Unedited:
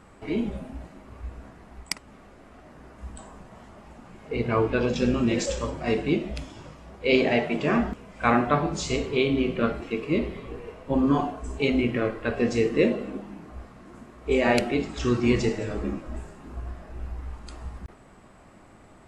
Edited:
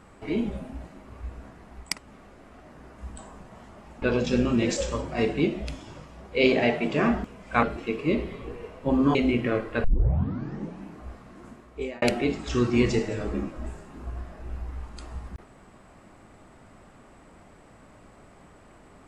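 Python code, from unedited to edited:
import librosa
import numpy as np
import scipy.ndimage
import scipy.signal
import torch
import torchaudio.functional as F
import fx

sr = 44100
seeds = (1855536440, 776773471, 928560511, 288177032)

y = fx.edit(x, sr, fx.cut(start_s=4.02, length_s=0.69),
    fx.cut(start_s=8.32, length_s=1.35),
    fx.cut(start_s=11.19, length_s=0.46),
    fx.tape_start(start_s=12.34, length_s=1.01),
    fx.fade_out_span(start_s=13.99, length_s=0.53), tone=tone)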